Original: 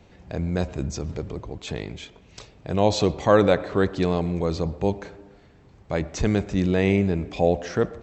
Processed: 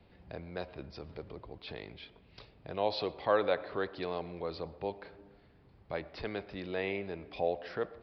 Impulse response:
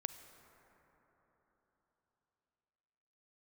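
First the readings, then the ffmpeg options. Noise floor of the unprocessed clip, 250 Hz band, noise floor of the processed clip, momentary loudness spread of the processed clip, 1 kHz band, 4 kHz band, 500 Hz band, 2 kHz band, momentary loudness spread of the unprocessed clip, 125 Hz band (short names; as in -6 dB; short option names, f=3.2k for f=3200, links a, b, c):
-53 dBFS, -19.0 dB, -62 dBFS, 17 LU, -9.5 dB, -9.0 dB, -11.5 dB, -9.0 dB, 15 LU, -21.5 dB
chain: -filter_complex "[0:a]aresample=11025,aresample=44100,acrossover=split=390|1900[a][b][c];[a]acompressor=threshold=-39dB:ratio=4[d];[d][b][c]amix=inputs=3:normalize=0,volume=-9dB"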